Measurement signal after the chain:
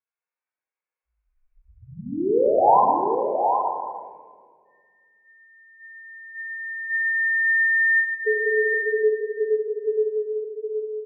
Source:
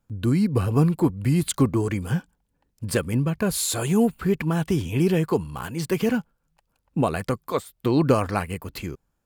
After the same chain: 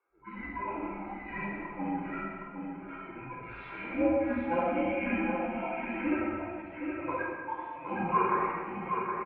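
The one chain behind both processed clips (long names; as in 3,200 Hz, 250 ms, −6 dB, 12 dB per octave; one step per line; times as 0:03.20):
harmonic-percussive split with one part muted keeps harmonic
high-pass filter 630 Hz 24 dB per octave
brickwall limiter −24 dBFS
Chebyshev low-pass filter 2,600 Hz, order 5
on a send: single-tap delay 767 ms −5.5 dB
on the sum: rectangular room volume 3,200 cubic metres, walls mixed, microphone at 5.7 metres
frequency shifter −150 Hz
dynamic equaliser 800 Hz, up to +6 dB, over −48 dBFS, Q 5.1
level +2 dB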